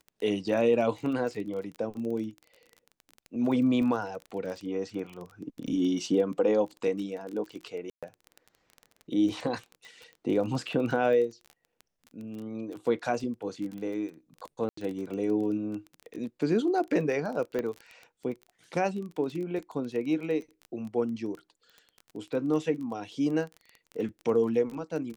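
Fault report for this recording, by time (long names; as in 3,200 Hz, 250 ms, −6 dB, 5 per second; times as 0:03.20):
surface crackle 21 per second −35 dBFS
0:07.90–0:08.03: drop-out 126 ms
0:14.69–0:14.77: drop-out 84 ms
0:17.59: click −19 dBFS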